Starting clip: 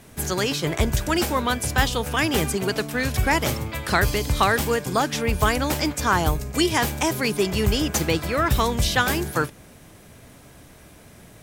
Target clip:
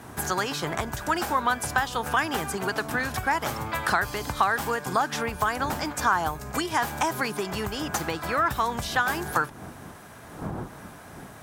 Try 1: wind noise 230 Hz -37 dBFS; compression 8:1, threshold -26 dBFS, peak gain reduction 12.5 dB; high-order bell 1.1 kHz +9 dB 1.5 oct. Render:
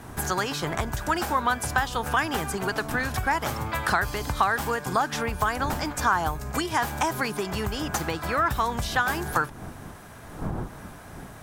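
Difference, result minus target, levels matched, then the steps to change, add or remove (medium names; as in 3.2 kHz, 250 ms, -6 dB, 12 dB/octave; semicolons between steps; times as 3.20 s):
125 Hz band +3.5 dB
add after compression: high-pass 120 Hz 6 dB/octave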